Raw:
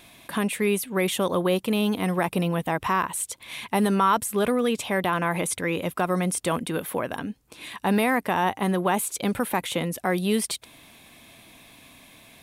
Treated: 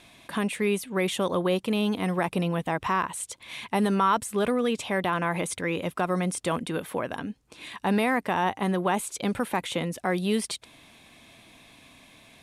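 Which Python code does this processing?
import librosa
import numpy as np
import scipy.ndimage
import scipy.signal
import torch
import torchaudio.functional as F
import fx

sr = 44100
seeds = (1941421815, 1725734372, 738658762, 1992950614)

y = scipy.signal.sosfilt(scipy.signal.butter(2, 8800.0, 'lowpass', fs=sr, output='sos'), x)
y = F.gain(torch.from_numpy(y), -2.0).numpy()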